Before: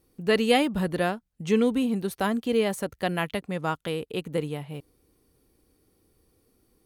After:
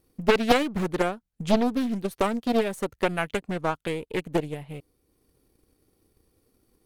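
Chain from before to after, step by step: half-wave gain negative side -3 dB; transient shaper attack +6 dB, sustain -3 dB; Doppler distortion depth 0.81 ms

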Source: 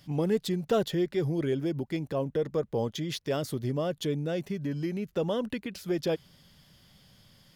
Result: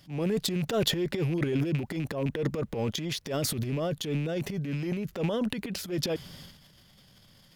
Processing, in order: rattling part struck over -34 dBFS, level -35 dBFS; transient shaper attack -9 dB, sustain +12 dB

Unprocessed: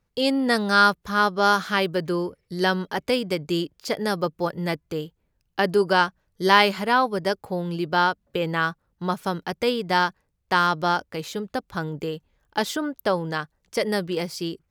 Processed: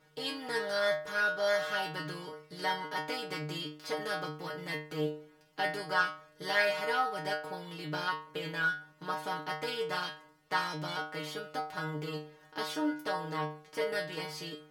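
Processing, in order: per-bin compression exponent 0.6; metallic resonator 150 Hz, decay 0.49 s, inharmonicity 0.002; 13.31–13.95 dynamic EQ 6400 Hz, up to -5 dB, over -54 dBFS, Q 0.78

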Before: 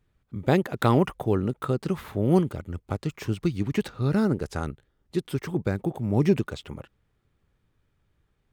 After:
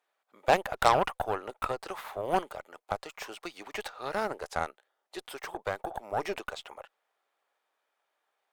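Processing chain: ladder high-pass 590 Hz, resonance 45%; added harmonics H 6 -14 dB, 8 -13 dB, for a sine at -15 dBFS; gain +7.5 dB

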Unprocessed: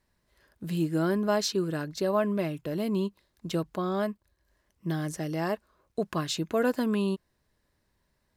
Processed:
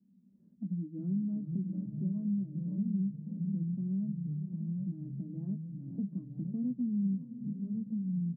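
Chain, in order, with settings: Butterworth band-pass 210 Hz, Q 3.9; doubler 16 ms -5.5 dB; diffused feedback echo 0.539 s, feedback 40%, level -13 dB; echoes that change speed 0.283 s, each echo -2 st, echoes 3, each echo -6 dB; three-band squash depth 70%; gain -1 dB

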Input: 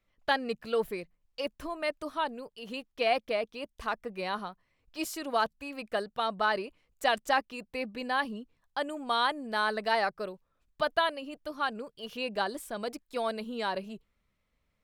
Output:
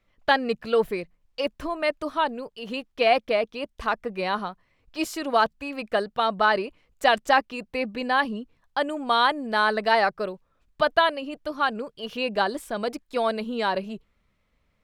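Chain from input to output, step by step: high shelf 7300 Hz -9.5 dB; gain +7.5 dB

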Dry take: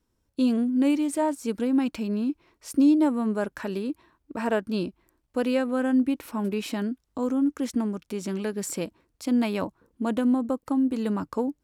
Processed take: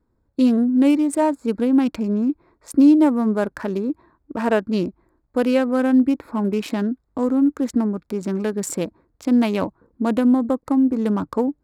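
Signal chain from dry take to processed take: Wiener smoothing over 15 samples; gain +6.5 dB

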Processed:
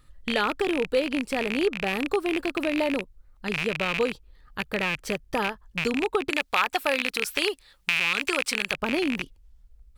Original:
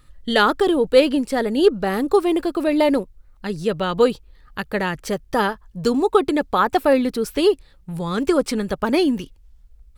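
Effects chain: rattling part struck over -30 dBFS, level -8 dBFS; 6.3–8.74 tilt shelf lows -9 dB, about 650 Hz; compressor 2:1, threshold -20 dBFS, peak gain reduction 7.5 dB; gain -4.5 dB

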